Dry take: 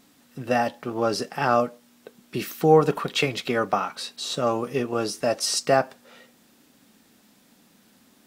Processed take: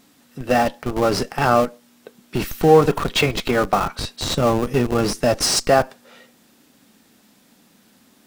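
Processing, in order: 4.23–5.59 s: tone controls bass +6 dB, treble +1 dB; in parallel at -4 dB: Schmitt trigger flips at -25 dBFS; on the sum: trim +3 dB

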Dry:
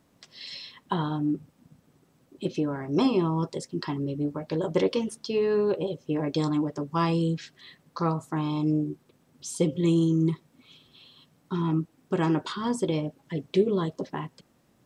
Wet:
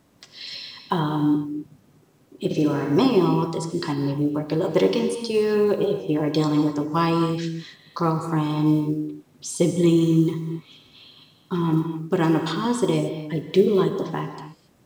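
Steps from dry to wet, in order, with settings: block-companded coder 7-bit; 2.45–2.99 s: flutter echo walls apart 9.7 m, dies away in 0.8 s; gated-style reverb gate 300 ms flat, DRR 6 dB; trim +4.5 dB

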